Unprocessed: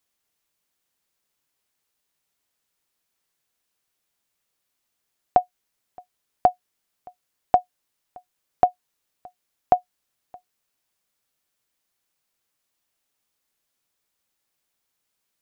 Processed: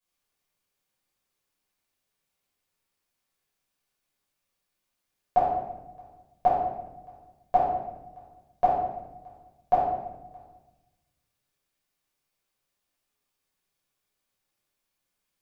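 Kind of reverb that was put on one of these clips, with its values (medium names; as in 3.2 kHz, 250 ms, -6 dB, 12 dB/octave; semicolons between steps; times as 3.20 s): simulated room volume 490 m³, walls mixed, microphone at 5.5 m; trim -14 dB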